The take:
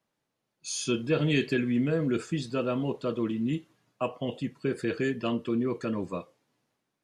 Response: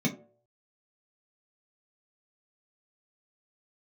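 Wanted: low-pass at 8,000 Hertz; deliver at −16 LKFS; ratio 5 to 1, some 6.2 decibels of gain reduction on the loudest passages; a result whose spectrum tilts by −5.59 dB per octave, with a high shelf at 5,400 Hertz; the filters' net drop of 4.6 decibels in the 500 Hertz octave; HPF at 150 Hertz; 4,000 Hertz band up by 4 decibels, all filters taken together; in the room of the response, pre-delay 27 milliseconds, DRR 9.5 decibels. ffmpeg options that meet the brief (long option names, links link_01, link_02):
-filter_complex "[0:a]highpass=150,lowpass=8000,equalizer=frequency=500:width_type=o:gain=-6,equalizer=frequency=4000:width_type=o:gain=4.5,highshelf=frequency=5400:gain=3,acompressor=threshold=-30dB:ratio=5,asplit=2[link_01][link_02];[1:a]atrim=start_sample=2205,adelay=27[link_03];[link_02][link_03]afir=irnorm=-1:irlink=0,volume=-17dB[link_04];[link_01][link_04]amix=inputs=2:normalize=0,volume=14dB"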